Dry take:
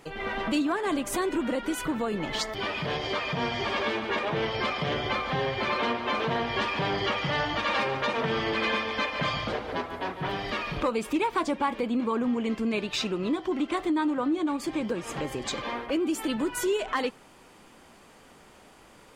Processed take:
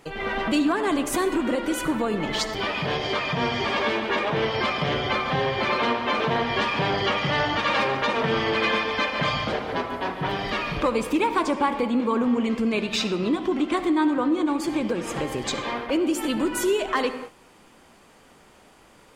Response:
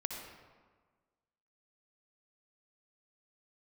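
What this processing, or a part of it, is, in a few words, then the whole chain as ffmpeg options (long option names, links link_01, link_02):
keyed gated reverb: -filter_complex "[0:a]asplit=3[link_01][link_02][link_03];[1:a]atrim=start_sample=2205[link_04];[link_02][link_04]afir=irnorm=-1:irlink=0[link_05];[link_03]apad=whole_len=844793[link_06];[link_05][link_06]sidechaingate=range=-33dB:threshold=-49dB:ratio=16:detection=peak,volume=-3.5dB[link_07];[link_01][link_07]amix=inputs=2:normalize=0"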